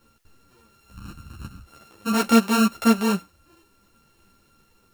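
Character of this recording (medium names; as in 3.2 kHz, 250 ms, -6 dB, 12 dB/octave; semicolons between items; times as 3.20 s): a buzz of ramps at a fixed pitch in blocks of 32 samples; tremolo triangle 0.53 Hz, depth 35%; a quantiser's noise floor 12-bit, dither triangular; a shimmering, thickened sound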